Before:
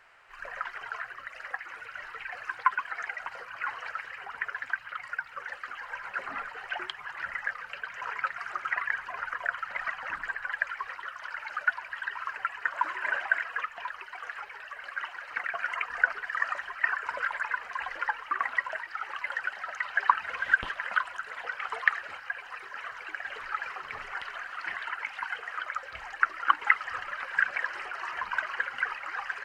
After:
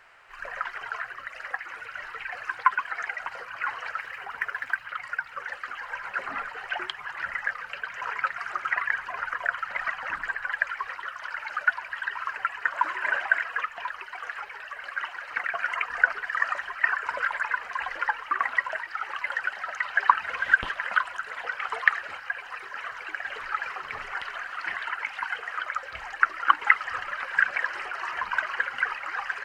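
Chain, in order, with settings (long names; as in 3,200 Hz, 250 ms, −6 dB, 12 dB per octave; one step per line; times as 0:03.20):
0:04.00–0:04.85: running median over 5 samples
level +3.5 dB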